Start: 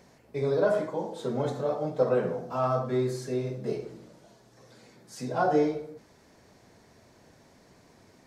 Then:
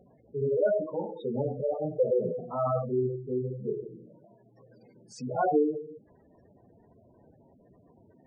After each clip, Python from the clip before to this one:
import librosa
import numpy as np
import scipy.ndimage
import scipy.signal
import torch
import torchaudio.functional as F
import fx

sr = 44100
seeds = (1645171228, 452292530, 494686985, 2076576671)

y = fx.spec_gate(x, sr, threshold_db=-10, keep='strong')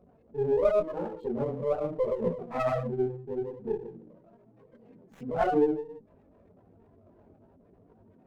y = fx.wiener(x, sr, points=9)
y = fx.chorus_voices(y, sr, voices=6, hz=0.81, base_ms=20, depth_ms=2.7, mix_pct=55)
y = fx.running_max(y, sr, window=9)
y = y * 10.0 ** (3.5 / 20.0)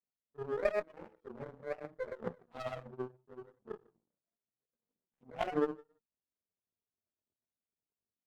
y = fx.power_curve(x, sr, exponent=2.0)
y = y * 10.0 ** (-3.0 / 20.0)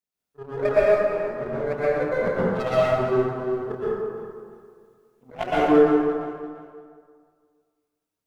y = fx.rider(x, sr, range_db=5, speed_s=2.0)
y = fx.echo_feedback(y, sr, ms=343, feedback_pct=28, wet_db=-14.5)
y = fx.rev_plate(y, sr, seeds[0], rt60_s=1.9, hf_ratio=0.5, predelay_ms=105, drr_db=-9.5)
y = y * 10.0 ** (5.5 / 20.0)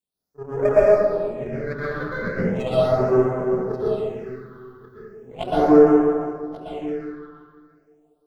y = x + 10.0 ** (-13.0 / 20.0) * np.pad(x, (int(1135 * sr / 1000.0), 0))[:len(x)]
y = fx.phaser_stages(y, sr, stages=6, low_hz=640.0, high_hz=3800.0, hz=0.37, feedback_pct=30)
y = y * 10.0 ** (3.0 / 20.0)